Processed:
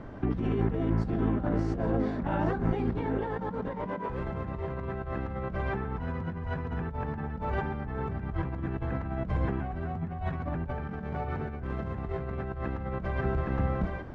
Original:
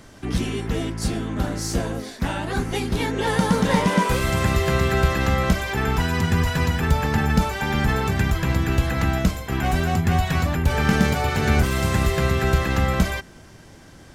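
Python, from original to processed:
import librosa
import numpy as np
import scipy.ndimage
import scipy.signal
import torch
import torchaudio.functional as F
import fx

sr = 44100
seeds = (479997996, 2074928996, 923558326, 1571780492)

y = x + 10.0 ** (-12.0 / 20.0) * np.pad(x, (int(815 * sr / 1000.0), 0))[:len(x)]
y = fx.over_compress(y, sr, threshold_db=-29.0, ratio=-1.0)
y = scipy.signal.sosfilt(scipy.signal.butter(2, 1200.0, 'lowpass', fs=sr, output='sos'), y)
y = y * 10.0 ** (-2.5 / 20.0)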